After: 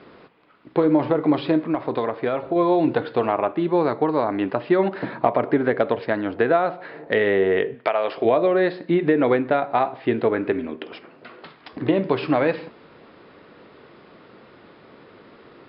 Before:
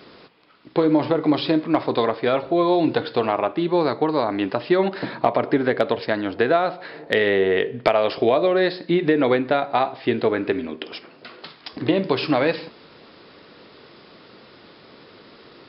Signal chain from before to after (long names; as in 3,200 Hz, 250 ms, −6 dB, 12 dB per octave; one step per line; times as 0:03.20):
low-pass filter 2,300 Hz 12 dB per octave
0:01.69–0:02.56: downward compressor, threshold −19 dBFS, peak gain reduction 6.5 dB
0:07.73–0:08.24: high-pass filter 1,200 Hz → 350 Hz 6 dB per octave